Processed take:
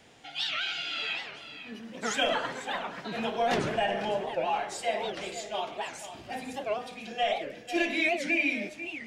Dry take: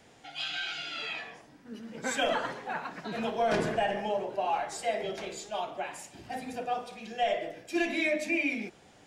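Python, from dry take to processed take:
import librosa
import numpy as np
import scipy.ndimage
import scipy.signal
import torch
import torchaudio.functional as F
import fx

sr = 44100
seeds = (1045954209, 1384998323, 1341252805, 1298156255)

p1 = fx.peak_eq(x, sr, hz=3000.0, db=4.5, octaves=1.1)
p2 = p1 + fx.echo_single(p1, sr, ms=496, db=-11.5, dry=0)
y = fx.record_warp(p2, sr, rpm=78.0, depth_cents=250.0)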